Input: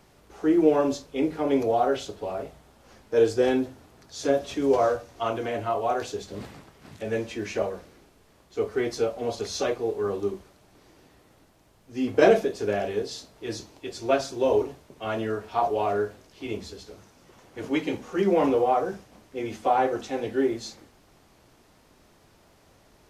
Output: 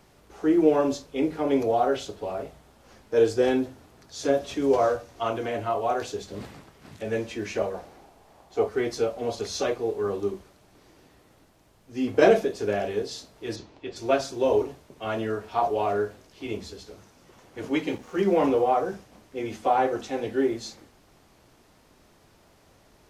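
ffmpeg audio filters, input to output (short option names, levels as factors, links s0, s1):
-filter_complex "[0:a]asettb=1/sr,asplit=3[s0][s1][s2];[s0]atrim=end=7.744[s3];[s1]atrim=start=7.74:end=8.69,asetpts=PTS-STARTPTS,afade=t=in:d=0.004:c=qsin,afade=t=out:st=0.946:d=0.004:c=qsin,equalizer=f=770:t=o:w=0.75:g=13[s4];[s2]atrim=start=8.686[s5];[s3][s4]acrossfade=d=0.004:c1=hsin:c2=qsin[s6];[s6][s5]acrossfade=d=0.004:c1=qsin:c2=hsin,asplit=3[s7][s8][s9];[s7]afade=t=out:st=13.55:d=0.02[s10];[s8]lowpass=3700,afade=t=in:st=13.55:d=0.02,afade=t=out:st=13.95:d=0.02[s11];[s9]afade=t=in:st=13.95:d=0.02[s12];[s10][s11][s12]amix=inputs=3:normalize=0,asettb=1/sr,asplit=3[s13][s14][s15];[s13]atrim=end=17.884[s16];[s14]atrim=start=17.88:end=18.37,asetpts=PTS-STARTPTS,afade=t=in:d=0.004:c=qsin,afade=t=out:st=0.486:d=0.004:c=qsin,aeval=exprs='sgn(val(0))*max(abs(val(0))-0.00316,0)':c=same[s17];[s15]atrim=start=18.366[s18];[s16][s17]acrossfade=d=0.004:c1=hsin:c2=qsin[s19];[s19][s18]acrossfade=d=0.004:c1=qsin:c2=hsin"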